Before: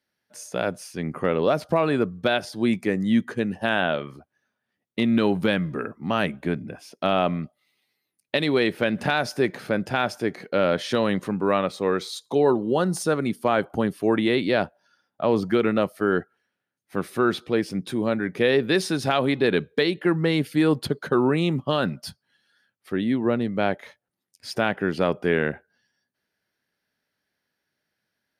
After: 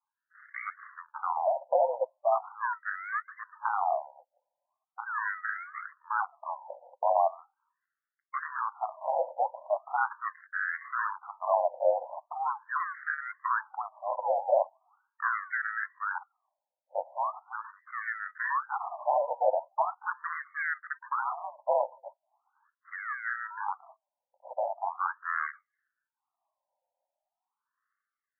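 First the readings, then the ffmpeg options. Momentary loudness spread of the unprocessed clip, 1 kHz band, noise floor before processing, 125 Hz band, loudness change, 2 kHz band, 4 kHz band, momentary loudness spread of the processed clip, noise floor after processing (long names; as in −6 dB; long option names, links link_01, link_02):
9 LU, −0.5 dB, −82 dBFS, below −40 dB, −8.0 dB, −5.0 dB, below −40 dB, 13 LU, below −85 dBFS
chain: -af "acrusher=samples=29:mix=1:aa=0.000001:lfo=1:lforange=29:lforate=0.78,highpass=frequency=320:width_type=q:width=0.5412,highpass=frequency=320:width_type=q:width=1.307,lowpass=frequency=2100:width_type=q:width=0.5176,lowpass=frequency=2100:width_type=q:width=0.7071,lowpass=frequency=2100:width_type=q:width=1.932,afreqshift=63,afftfilt=real='re*between(b*sr/1024,700*pow(1600/700,0.5+0.5*sin(2*PI*0.4*pts/sr))/1.41,700*pow(1600/700,0.5+0.5*sin(2*PI*0.4*pts/sr))*1.41)':imag='im*between(b*sr/1024,700*pow(1600/700,0.5+0.5*sin(2*PI*0.4*pts/sr))/1.41,700*pow(1600/700,0.5+0.5*sin(2*PI*0.4*pts/sr))*1.41)':win_size=1024:overlap=0.75"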